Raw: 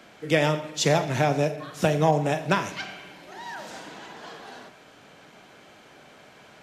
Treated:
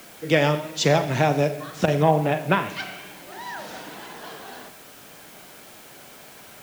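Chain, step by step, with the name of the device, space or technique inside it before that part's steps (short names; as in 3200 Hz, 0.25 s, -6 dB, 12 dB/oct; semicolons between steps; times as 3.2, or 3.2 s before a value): 2.02–2.7 inverse Chebyshev low-pass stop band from 8400 Hz, stop band 50 dB; worn cassette (LPF 6200 Hz; wow and flutter; level dips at 1.86, 15 ms -9 dB; white noise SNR 23 dB); gain +2.5 dB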